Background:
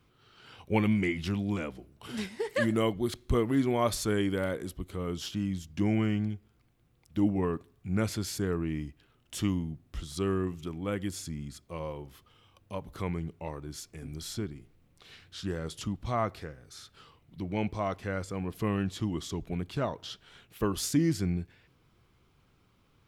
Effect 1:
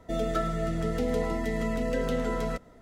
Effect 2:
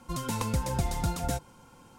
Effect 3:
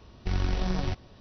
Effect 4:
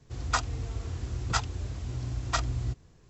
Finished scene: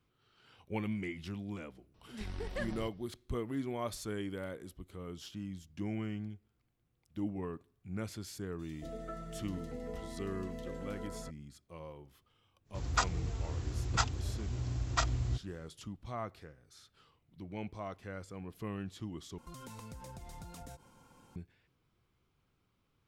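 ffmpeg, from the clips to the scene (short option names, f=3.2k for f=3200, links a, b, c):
-filter_complex "[0:a]volume=-10.5dB[a];[1:a]acrossover=split=2500[b][c];[b]adelay=230[d];[d][c]amix=inputs=2:normalize=0[e];[2:a]acompressor=threshold=-38dB:ratio=6:attack=3.2:release=140:knee=1:detection=peak[f];[a]asplit=2[g][h];[g]atrim=end=19.384[i];[f]atrim=end=1.98,asetpts=PTS-STARTPTS,volume=-7dB[j];[h]atrim=start=21.356[k];[3:a]atrim=end=1.2,asetpts=PTS-STARTPTS,volume=-15dB,afade=t=in:d=0.004:c=hsin,afade=t=out:st=1.196:d=0.004:c=hsin,adelay=1940[l];[e]atrim=end=2.81,asetpts=PTS-STARTPTS,volume=-15dB,afade=t=in:d=0.004:c=hsin,afade=t=out:st=2.806:d=0.004:c=hsin,adelay=374850S[m];[4:a]atrim=end=3.09,asetpts=PTS-STARTPTS,volume=-2.5dB,afade=t=in:d=0.1,afade=t=out:st=2.99:d=0.1,adelay=12640[n];[i][j]acrossfade=d=0.004:c1=hsin:c2=hsin[o];[o][k]acrossfade=d=0.004:c1=hsin:c2=hsin[p];[p][l][m][n]amix=inputs=4:normalize=0"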